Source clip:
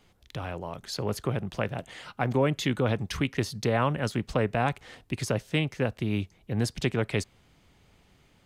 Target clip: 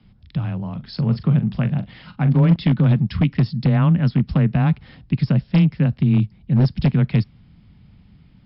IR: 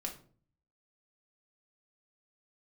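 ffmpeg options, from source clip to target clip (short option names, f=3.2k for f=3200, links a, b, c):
-filter_complex "[0:a]lowshelf=f=270:t=q:w=1.5:g=13,afreqshift=16,aeval=exprs='0.376*(abs(mod(val(0)/0.376+3,4)-2)-1)':c=same,asettb=1/sr,asplit=3[a][b][c];[a]atrim=end=0.554[d];[b]atrim=start=0.55:end=2.56,asetpts=PTS-STARTPTS,afade=t=in:d=0.004:c=qsin,afade=t=out:st=2.006:d=0.004:c=qsin,asplit=2[e][f];[f]adelay=41,volume=-12dB[g];[e][g]amix=inputs=2:normalize=0,atrim=end_sample=88641[h];[c]atrim=start=2.556[i];[d][h]acrossfade=d=0.004:c1=hsin:c2=qsin[j];[j][i]acrossfade=d=0.004:c1=qsin:c2=hsin" -ar 12000 -c:a libmp3lame -b:a 64k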